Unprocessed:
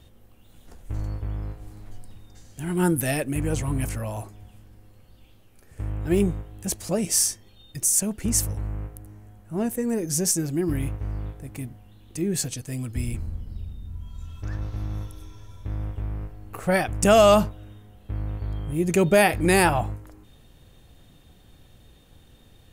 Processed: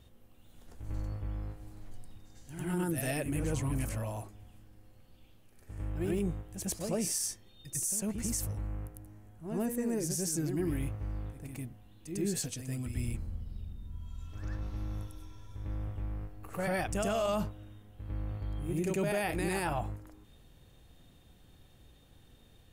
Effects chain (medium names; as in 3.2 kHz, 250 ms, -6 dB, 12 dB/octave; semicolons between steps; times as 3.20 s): short-mantissa float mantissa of 8-bit; reverse echo 100 ms -7 dB; peak limiter -16.5 dBFS, peak gain reduction 11.5 dB; trim -7 dB